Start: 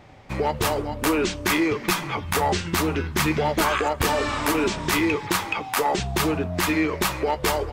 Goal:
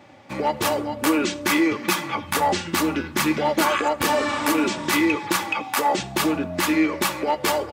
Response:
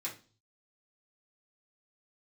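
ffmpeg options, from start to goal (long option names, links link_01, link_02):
-filter_complex "[0:a]highpass=frequency=110:width=0.5412,highpass=frequency=110:width=1.3066,aecho=1:1:3.5:0.5,asplit=2[link_01][link_02];[1:a]atrim=start_sample=2205,adelay=70[link_03];[link_02][link_03]afir=irnorm=-1:irlink=0,volume=-20.5dB[link_04];[link_01][link_04]amix=inputs=2:normalize=0"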